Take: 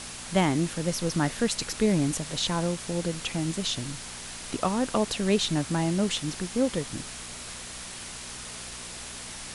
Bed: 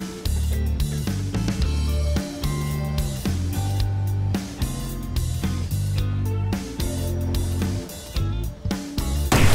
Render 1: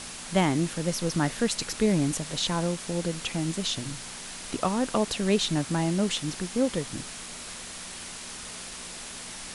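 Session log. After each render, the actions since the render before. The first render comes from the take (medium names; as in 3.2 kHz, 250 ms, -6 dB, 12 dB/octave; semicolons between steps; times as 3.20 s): de-hum 60 Hz, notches 2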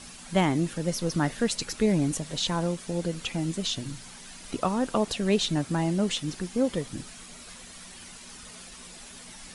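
noise reduction 9 dB, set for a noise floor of -40 dBFS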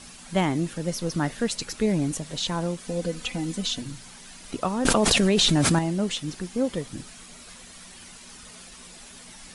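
2.84–3.82 s: comb 4 ms; 4.85–5.79 s: level flattener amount 100%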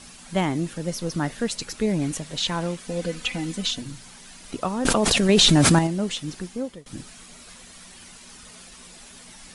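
1.99–3.71 s: dynamic bell 2.2 kHz, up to +6 dB, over -44 dBFS, Q 0.78; 5.29–5.87 s: gain +4.5 dB; 6.42–6.86 s: fade out, to -22.5 dB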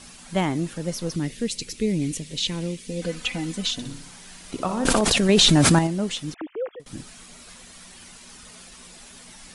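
1.16–3.02 s: high-order bell 1 kHz -14 dB; 3.73–5.01 s: flutter echo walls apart 10.4 m, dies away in 0.51 s; 6.34–6.80 s: formants replaced by sine waves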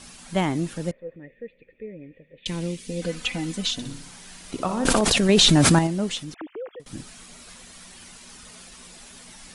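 0.91–2.46 s: cascade formant filter e; 6.22–6.81 s: compression 2.5:1, threshold -33 dBFS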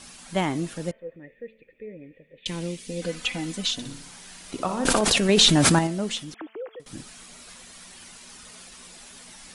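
bass shelf 230 Hz -5 dB; de-hum 221.5 Hz, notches 15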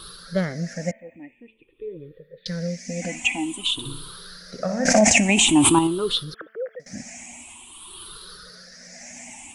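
drifting ripple filter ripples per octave 0.62, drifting +0.49 Hz, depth 23 dB; tremolo 0.98 Hz, depth 42%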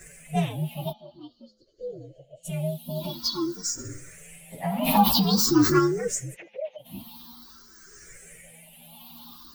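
frequency axis rescaled in octaves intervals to 125%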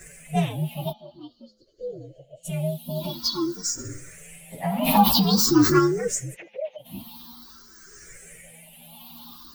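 trim +2 dB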